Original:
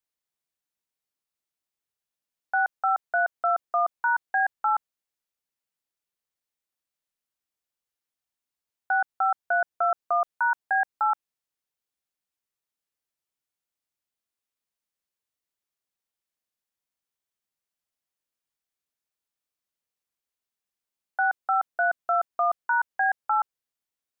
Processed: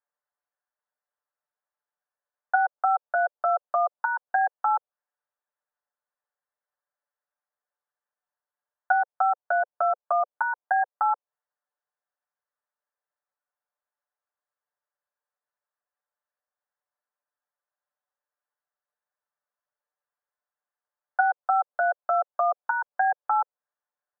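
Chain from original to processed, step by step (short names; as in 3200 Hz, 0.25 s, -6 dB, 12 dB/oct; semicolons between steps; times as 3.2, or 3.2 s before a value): treble ducked by the level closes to 730 Hz, closed at -25 dBFS; elliptic band-pass 510–1700 Hz; comb 6.8 ms, depth 83%; gain +4 dB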